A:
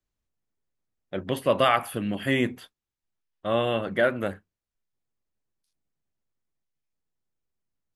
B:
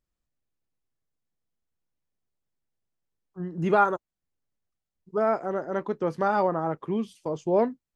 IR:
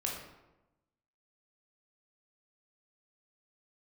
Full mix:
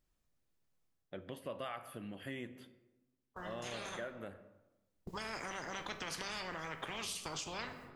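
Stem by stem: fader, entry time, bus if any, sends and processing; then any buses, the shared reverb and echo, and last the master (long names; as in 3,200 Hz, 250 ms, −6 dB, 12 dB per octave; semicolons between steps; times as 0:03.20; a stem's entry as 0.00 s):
0:00.96 −5.5 dB → 0:01.22 −15.5 dB, 0.00 s, send −12.5 dB, no processing
−4.5 dB, 0.00 s, send −6 dB, noise gate with hold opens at −51 dBFS; brickwall limiter −17 dBFS, peak gain reduction 7 dB; every bin compressed towards the loudest bin 10 to 1; automatic ducking −16 dB, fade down 0.25 s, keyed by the first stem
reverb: on, RT60 1.0 s, pre-delay 15 ms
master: downward compressor 2.5 to 1, threshold −43 dBFS, peak gain reduction 10 dB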